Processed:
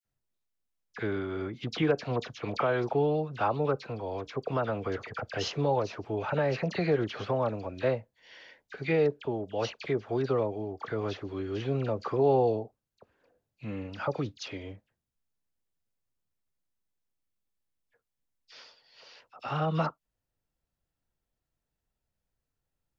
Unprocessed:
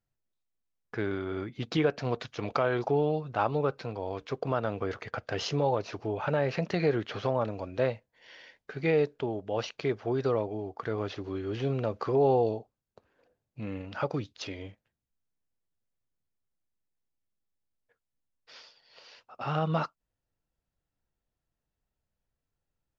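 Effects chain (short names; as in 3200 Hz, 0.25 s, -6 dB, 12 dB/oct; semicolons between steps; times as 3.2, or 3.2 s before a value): dispersion lows, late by 51 ms, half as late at 1900 Hz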